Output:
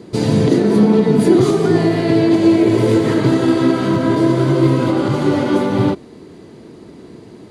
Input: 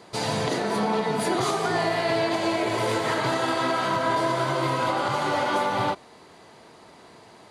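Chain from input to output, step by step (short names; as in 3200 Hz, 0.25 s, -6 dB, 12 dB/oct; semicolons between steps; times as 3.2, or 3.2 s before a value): resonant low shelf 510 Hz +13.5 dB, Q 1.5; gain +1.5 dB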